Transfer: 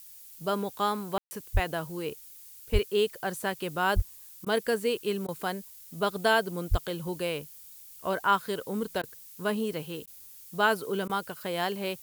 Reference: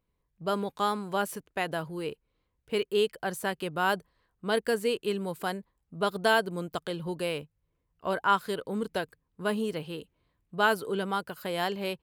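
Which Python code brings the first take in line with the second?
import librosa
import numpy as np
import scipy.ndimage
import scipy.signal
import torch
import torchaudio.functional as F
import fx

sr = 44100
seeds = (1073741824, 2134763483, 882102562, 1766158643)

y = fx.fix_deplosive(x, sr, at_s=(1.53, 2.72, 3.95, 6.7))
y = fx.fix_ambience(y, sr, seeds[0], print_start_s=7.52, print_end_s=8.02, start_s=1.18, end_s=1.31)
y = fx.fix_interpolate(y, sr, at_s=(4.45, 5.27, 9.02, 10.06, 11.08), length_ms=13.0)
y = fx.noise_reduce(y, sr, print_start_s=7.52, print_end_s=8.02, reduce_db=27.0)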